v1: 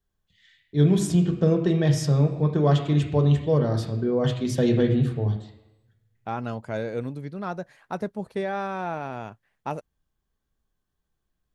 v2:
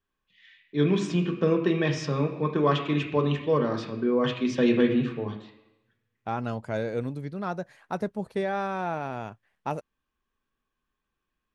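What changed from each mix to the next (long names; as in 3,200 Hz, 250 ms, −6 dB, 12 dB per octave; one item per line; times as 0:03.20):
first voice: add loudspeaker in its box 240–5,500 Hz, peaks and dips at 250 Hz +4 dB, 700 Hz −7 dB, 1,100 Hz +8 dB, 1,700 Hz +3 dB, 2,500 Hz +10 dB, 4,500 Hz −4 dB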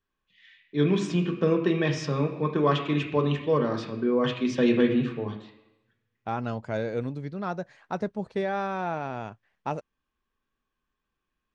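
second voice: add low-pass filter 7,000 Hz 24 dB per octave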